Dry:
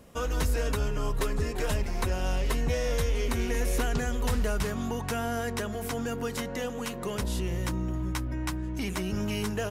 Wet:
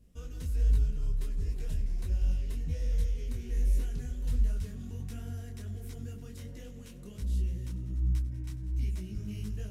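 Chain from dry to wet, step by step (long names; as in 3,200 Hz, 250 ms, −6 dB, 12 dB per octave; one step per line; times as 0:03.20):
guitar amp tone stack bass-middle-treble 10-0-1
echo machine with several playback heads 97 ms, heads all three, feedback 43%, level −17.5 dB
micro pitch shift up and down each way 47 cents
level +9 dB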